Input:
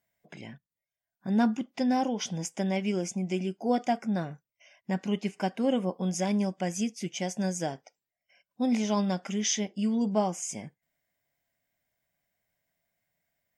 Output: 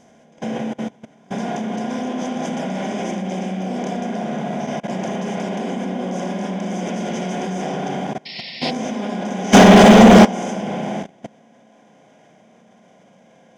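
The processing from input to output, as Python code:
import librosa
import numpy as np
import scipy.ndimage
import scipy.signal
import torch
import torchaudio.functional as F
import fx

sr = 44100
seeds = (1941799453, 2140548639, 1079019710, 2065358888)

y = fx.bin_compress(x, sr, power=0.2)
y = fx.peak_eq(y, sr, hz=87.0, db=7.0, octaves=2.6)
y = fx.rev_spring(y, sr, rt60_s=3.6, pass_ms=(32, 49, 58), chirp_ms=65, drr_db=-9.0)
y = fx.level_steps(y, sr, step_db=15)
y = fx.spec_paint(y, sr, seeds[0], shape='noise', start_s=8.25, length_s=0.46, low_hz=1800.0, high_hz=5500.0, level_db=-19.0)
y = fx.leveller(y, sr, passes=3, at=(9.53, 10.25))
y = fx.upward_expand(y, sr, threshold_db=-23.0, expansion=2.5)
y = F.gain(torch.from_numpy(y), 3.0).numpy()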